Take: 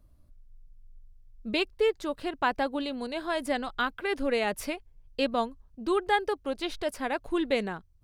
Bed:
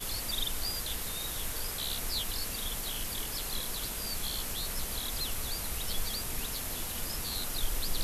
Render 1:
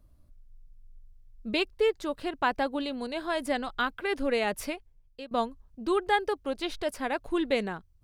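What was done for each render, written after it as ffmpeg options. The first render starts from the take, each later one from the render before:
ffmpeg -i in.wav -filter_complex "[0:a]asplit=2[link_01][link_02];[link_01]atrim=end=5.31,asetpts=PTS-STARTPTS,afade=type=out:start_time=4.63:duration=0.68:silence=0.0749894[link_03];[link_02]atrim=start=5.31,asetpts=PTS-STARTPTS,afade=type=in:duration=0.004:curve=hsin:silence=0.0749894[link_04];[link_03][link_04]concat=n=2:v=0:a=1" out.wav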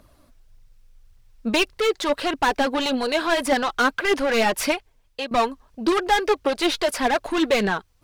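ffmpeg -i in.wav -filter_complex "[0:a]asplit=2[link_01][link_02];[link_02]highpass=frequency=720:poles=1,volume=25dB,asoftclip=type=tanh:threshold=-13dB[link_03];[link_01][link_03]amix=inputs=2:normalize=0,lowpass=frequency=5400:poles=1,volume=-6dB,aphaser=in_gain=1:out_gain=1:delay=4.4:decay=0.41:speed=1.7:type=triangular" out.wav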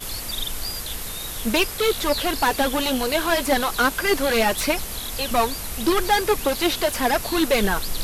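ffmpeg -i in.wav -i bed.wav -filter_complex "[1:a]volume=5dB[link_01];[0:a][link_01]amix=inputs=2:normalize=0" out.wav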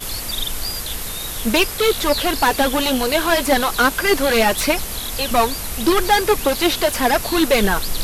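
ffmpeg -i in.wav -af "volume=4dB" out.wav

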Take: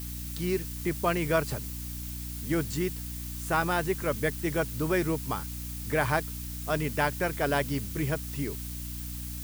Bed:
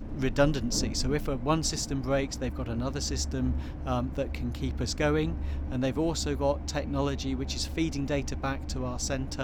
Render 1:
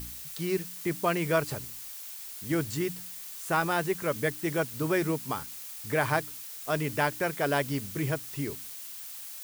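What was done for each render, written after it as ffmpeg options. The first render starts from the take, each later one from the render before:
ffmpeg -i in.wav -af "bandreject=frequency=60:width_type=h:width=4,bandreject=frequency=120:width_type=h:width=4,bandreject=frequency=180:width_type=h:width=4,bandreject=frequency=240:width_type=h:width=4,bandreject=frequency=300:width_type=h:width=4" out.wav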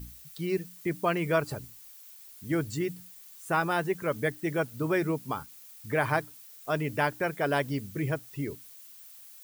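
ffmpeg -i in.wav -af "afftdn=noise_reduction=11:noise_floor=-42" out.wav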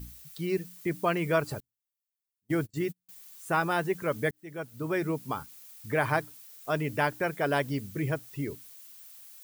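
ffmpeg -i in.wav -filter_complex "[0:a]asettb=1/sr,asplit=3[link_01][link_02][link_03];[link_01]atrim=end=1.604[link_04];[link_02]atrim=start=1.6:end=3.09,asetpts=PTS-STARTPTS,afade=type=in:duration=0.004:curve=qsin,afade=type=out:start_time=1.486:duration=0.004:curve=qsin,agate=range=-40dB:threshold=-36dB:ratio=16:release=100:detection=peak[link_05];[link_03]atrim=start=3.086[link_06];[link_04][link_05]acrossfade=duration=0.004:curve1=hsin:curve2=qsin[link_07];[link_07][link_06]acrossfade=duration=0.004:curve1=qsin:curve2=hsin,asplit=2[link_08][link_09];[link_08]atrim=end=4.31,asetpts=PTS-STARTPTS,afade=type=out:start_time=4.306:duration=0.004:curve=hsin[link_10];[link_09]atrim=start=4.31,asetpts=PTS-STARTPTS,afade=type=in:duration=1.19:curve=qsin[link_11];[link_10][link_11]concat=n=2:v=0:a=1" out.wav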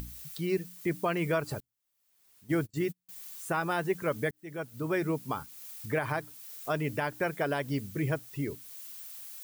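ffmpeg -i in.wav -af "alimiter=limit=-19dB:level=0:latency=1:release=145,acompressor=mode=upward:threshold=-37dB:ratio=2.5" out.wav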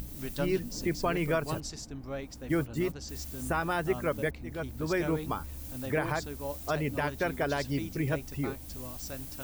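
ffmpeg -i in.wav -i bed.wav -filter_complex "[1:a]volume=-10.5dB[link_01];[0:a][link_01]amix=inputs=2:normalize=0" out.wav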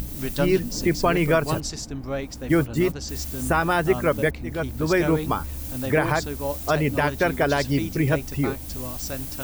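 ffmpeg -i in.wav -af "volume=9dB" out.wav

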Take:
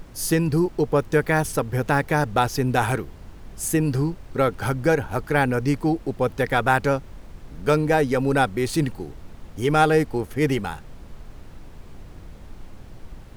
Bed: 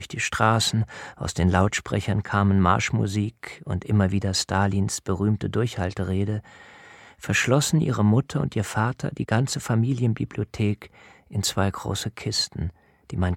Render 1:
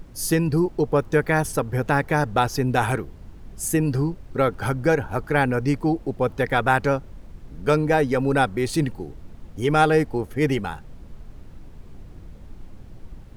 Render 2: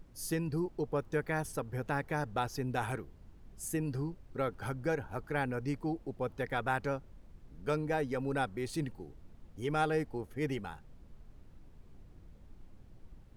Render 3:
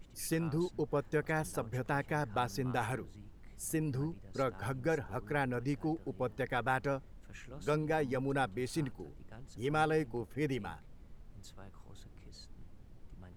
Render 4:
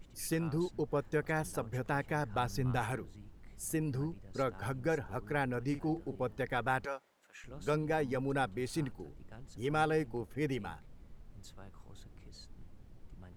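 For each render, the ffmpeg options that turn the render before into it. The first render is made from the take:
ffmpeg -i in.wav -af "afftdn=noise_reduction=6:noise_floor=-44" out.wav
ffmpeg -i in.wav -af "volume=-13.5dB" out.wav
ffmpeg -i in.wav -i bed.wav -filter_complex "[1:a]volume=-31dB[link_01];[0:a][link_01]amix=inputs=2:normalize=0" out.wav
ffmpeg -i in.wav -filter_complex "[0:a]asettb=1/sr,asplit=3[link_01][link_02][link_03];[link_01]atrim=end=2.234[link_04];[link_02]atrim=start=2.23:end=2.8,asetpts=PTS-STARTPTS,afade=type=in:duration=0.004:curve=qsin,afade=type=out:start_time=0.566:duration=0.004:curve=qsin,asubboost=boost=11:cutoff=180[link_05];[link_03]atrim=start=2.796[link_06];[link_04][link_05]acrossfade=duration=0.004:curve1=hsin:curve2=qsin[link_07];[link_07][link_06]acrossfade=duration=0.004:curve1=qsin:curve2=hsin,asettb=1/sr,asplit=3[link_08][link_09][link_10];[link_08]atrim=end=5.664[link_11];[link_09]atrim=start=5.66:end=6.2,asetpts=PTS-STARTPTS,afade=type=in:duration=0.004:curve=qsin,afade=type=out:start_time=0.536:duration=0.004:curve=qsin,asplit=2[link_12][link_13];[link_13]adelay=45,volume=-11dB[link_14];[link_12][link_14]amix=inputs=2:normalize=0,atrim=end_sample=23814[link_15];[link_10]atrim=start=6.196[link_16];[link_11][link_15]acrossfade=duration=0.004:curve1=hsin:curve2=qsin[link_17];[link_17][link_16]acrossfade=duration=0.004:curve1=qsin:curve2=hsin,asettb=1/sr,asplit=3[link_18][link_19][link_20];[link_18]atrim=end=6.854[link_21];[link_19]atrim=start=6.85:end=7.44,asetpts=PTS-STARTPTS,afade=type=in:duration=0.004:curve=qsin,afade=type=out:start_time=0.586:duration=0.004:curve=qsin,highpass=640[link_22];[link_20]atrim=start=7.436[link_23];[link_21][link_22]acrossfade=duration=0.004:curve1=hsin:curve2=qsin[link_24];[link_24][link_23]acrossfade=duration=0.004:curve1=qsin:curve2=hsin" out.wav

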